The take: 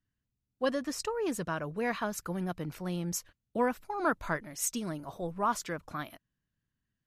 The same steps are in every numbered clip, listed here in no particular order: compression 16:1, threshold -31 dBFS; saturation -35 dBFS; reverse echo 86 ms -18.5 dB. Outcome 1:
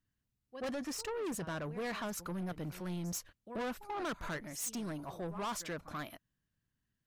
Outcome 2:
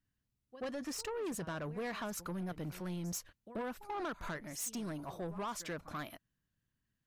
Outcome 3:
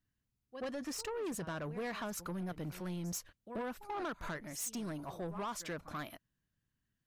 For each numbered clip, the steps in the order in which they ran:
reverse echo > saturation > compression; compression > reverse echo > saturation; reverse echo > compression > saturation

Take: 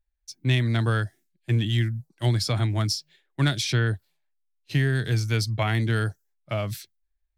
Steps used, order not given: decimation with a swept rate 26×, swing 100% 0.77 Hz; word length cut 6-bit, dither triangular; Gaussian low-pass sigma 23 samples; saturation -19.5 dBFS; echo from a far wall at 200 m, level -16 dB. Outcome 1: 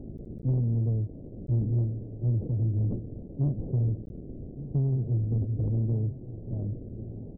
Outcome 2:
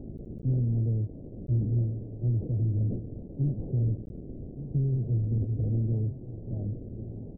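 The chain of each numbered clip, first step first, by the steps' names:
echo from a far wall > word length cut > decimation with a swept rate > Gaussian low-pass > saturation; echo from a far wall > saturation > word length cut > decimation with a swept rate > Gaussian low-pass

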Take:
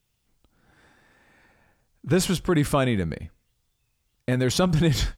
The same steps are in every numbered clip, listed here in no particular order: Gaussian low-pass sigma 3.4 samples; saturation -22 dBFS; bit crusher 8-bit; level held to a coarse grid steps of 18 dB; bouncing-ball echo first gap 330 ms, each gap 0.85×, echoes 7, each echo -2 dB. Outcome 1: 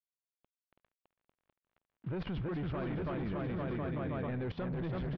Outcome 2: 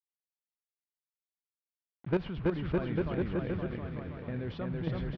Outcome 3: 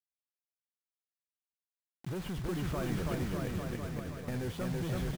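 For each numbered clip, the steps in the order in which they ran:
bit crusher > bouncing-ball echo > saturation > Gaussian low-pass > level held to a coarse grid; level held to a coarse grid > bouncing-ball echo > bit crusher > Gaussian low-pass > saturation; saturation > level held to a coarse grid > Gaussian low-pass > bit crusher > bouncing-ball echo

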